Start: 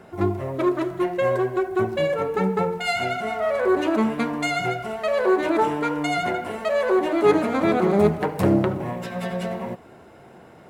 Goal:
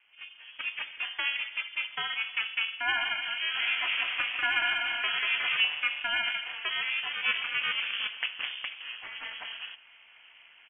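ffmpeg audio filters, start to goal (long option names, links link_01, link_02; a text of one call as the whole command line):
ffmpeg -i in.wav -filter_complex "[0:a]highpass=frequency=830:width=0.5412,highpass=frequency=830:width=1.3066,dynaudnorm=framelen=410:gausssize=3:maxgain=11dB,aeval=exprs='val(0)*sin(2*PI*130*n/s)':channel_layout=same,asplit=3[link_01][link_02][link_03];[link_01]afade=type=out:start_time=3.54:duration=0.02[link_04];[link_02]aecho=1:1:190|361|514.9|653.4|778.1:0.631|0.398|0.251|0.158|0.1,afade=type=in:start_time=3.54:duration=0.02,afade=type=out:start_time=5.6:duration=0.02[link_05];[link_03]afade=type=in:start_time=5.6:duration=0.02[link_06];[link_04][link_05][link_06]amix=inputs=3:normalize=0,lowpass=frequency=3100:width_type=q:width=0.5098,lowpass=frequency=3100:width_type=q:width=0.6013,lowpass=frequency=3100:width_type=q:width=0.9,lowpass=frequency=3100:width_type=q:width=2.563,afreqshift=-3700,volume=-9dB" out.wav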